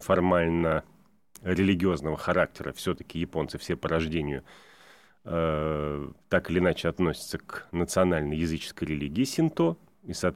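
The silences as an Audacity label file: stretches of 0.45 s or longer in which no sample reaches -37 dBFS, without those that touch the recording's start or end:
0.800000	1.360000	silence
4.390000	5.270000	silence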